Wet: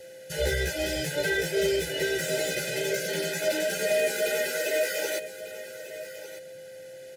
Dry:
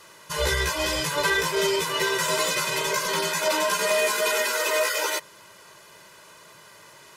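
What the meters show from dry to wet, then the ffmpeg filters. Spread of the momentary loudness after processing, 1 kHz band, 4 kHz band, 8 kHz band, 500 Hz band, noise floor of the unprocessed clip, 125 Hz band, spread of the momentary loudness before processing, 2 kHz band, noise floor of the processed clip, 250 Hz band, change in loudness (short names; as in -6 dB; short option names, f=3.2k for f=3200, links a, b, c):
15 LU, -16.0 dB, -6.5 dB, -6.0 dB, -0.5 dB, -50 dBFS, -1.0 dB, 3 LU, -4.5 dB, -44 dBFS, 0.0 dB, -4.0 dB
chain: -filter_complex "[0:a]highpass=55,equalizer=f=4.1k:w=0.32:g=-4.5,aeval=exprs='val(0)+0.00708*sin(2*PI*520*n/s)':c=same,acrossover=split=260|1800[a][b][c];[c]asoftclip=type=tanh:threshold=-29.5dB[d];[a][b][d]amix=inputs=3:normalize=0,asuperstop=centerf=1100:order=12:qfactor=1.8,asplit=2[e][f];[f]aecho=0:1:1198:0.2[g];[e][g]amix=inputs=2:normalize=0"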